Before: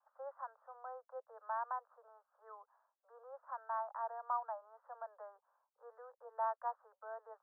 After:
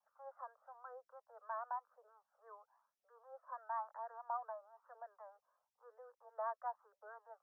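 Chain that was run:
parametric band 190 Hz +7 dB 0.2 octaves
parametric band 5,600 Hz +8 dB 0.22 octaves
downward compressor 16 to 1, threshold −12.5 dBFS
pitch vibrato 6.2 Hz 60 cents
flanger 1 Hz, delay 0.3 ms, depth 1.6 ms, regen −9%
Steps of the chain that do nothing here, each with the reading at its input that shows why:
parametric band 190 Hz: nothing at its input below 400 Hz
parametric band 5,600 Hz: nothing at its input above 1,800 Hz
downward compressor, threshold −12.5 dBFS: peak of its input −26.5 dBFS

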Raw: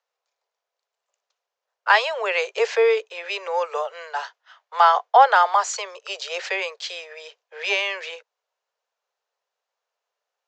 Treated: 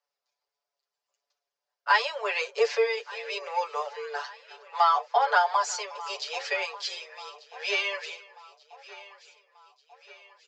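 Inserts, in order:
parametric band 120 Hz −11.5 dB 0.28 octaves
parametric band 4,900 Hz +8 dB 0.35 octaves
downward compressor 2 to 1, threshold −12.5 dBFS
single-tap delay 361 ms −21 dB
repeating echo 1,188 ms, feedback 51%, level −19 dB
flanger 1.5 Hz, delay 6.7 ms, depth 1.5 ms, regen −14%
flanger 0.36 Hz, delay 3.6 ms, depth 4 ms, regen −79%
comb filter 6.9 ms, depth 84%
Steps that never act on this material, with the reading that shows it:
parametric band 120 Hz: nothing at its input below 360 Hz

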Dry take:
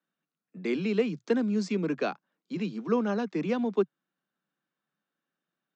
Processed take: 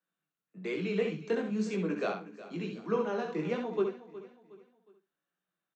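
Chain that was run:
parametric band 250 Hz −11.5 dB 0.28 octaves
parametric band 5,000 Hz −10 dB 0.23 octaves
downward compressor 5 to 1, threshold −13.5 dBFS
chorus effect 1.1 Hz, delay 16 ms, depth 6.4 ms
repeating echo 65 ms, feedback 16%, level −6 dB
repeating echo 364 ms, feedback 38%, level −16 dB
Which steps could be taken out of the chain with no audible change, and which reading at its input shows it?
downward compressor, threshold −13.5 dBFS: peak of its input −15.0 dBFS

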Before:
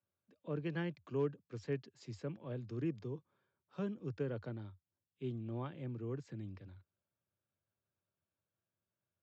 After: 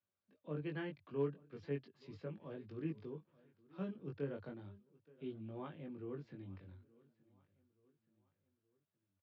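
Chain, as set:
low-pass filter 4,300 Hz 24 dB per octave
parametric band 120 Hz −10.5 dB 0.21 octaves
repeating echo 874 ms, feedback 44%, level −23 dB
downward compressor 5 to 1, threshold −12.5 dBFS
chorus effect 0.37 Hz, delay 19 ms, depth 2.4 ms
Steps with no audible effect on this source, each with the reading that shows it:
downward compressor, threshold −12.5 dBFS: peak of its input −25.5 dBFS

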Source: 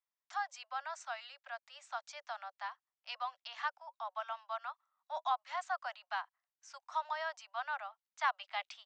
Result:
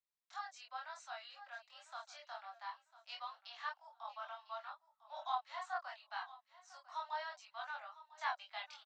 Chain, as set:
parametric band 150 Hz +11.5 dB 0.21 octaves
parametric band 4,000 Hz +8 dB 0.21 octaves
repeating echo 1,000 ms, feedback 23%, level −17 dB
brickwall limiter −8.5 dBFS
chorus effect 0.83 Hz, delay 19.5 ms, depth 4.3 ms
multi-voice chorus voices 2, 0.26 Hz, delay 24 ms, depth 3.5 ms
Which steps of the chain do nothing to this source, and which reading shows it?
parametric band 150 Hz: nothing at its input below 510 Hz
brickwall limiter −8.5 dBFS: peak of its input −21.5 dBFS

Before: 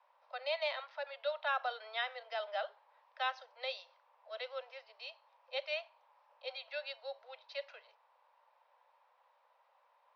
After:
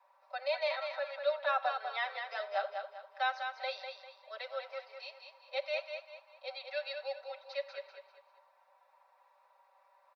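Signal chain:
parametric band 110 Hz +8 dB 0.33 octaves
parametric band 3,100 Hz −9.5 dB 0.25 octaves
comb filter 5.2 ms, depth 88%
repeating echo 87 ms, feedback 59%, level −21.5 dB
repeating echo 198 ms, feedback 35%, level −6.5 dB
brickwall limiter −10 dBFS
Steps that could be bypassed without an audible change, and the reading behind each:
parametric band 110 Hz: nothing at its input below 430 Hz
brickwall limiter −10 dBFS: peak of its input −19.5 dBFS

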